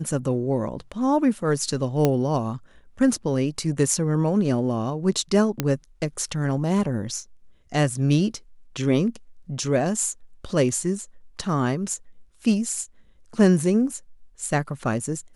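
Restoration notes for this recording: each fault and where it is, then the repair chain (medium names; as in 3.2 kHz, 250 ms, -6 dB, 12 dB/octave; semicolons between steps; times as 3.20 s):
2.05 s: pop -7 dBFS
5.60 s: pop -7 dBFS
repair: de-click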